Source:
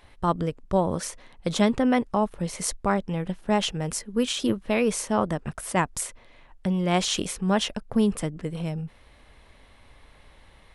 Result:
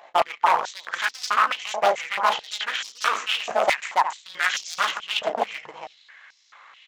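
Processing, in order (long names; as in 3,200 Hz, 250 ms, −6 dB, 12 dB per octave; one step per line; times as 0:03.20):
running median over 9 samples
multi-tap delay 43/237/440/564 ms −7.5/−19/−3.5/−15 dB
downsampling to 16,000 Hz
on a send at −17.5 dB: convolution reverb RT60 0.25 s, pre-delay 3 ms
on the sum: wave folding −20 dBFS
time stretch by overlap-add 0.64×, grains 36 ms
high-pass on a step sequencer 4.6 Hz 680–5,200 Hz
level +5.5 dB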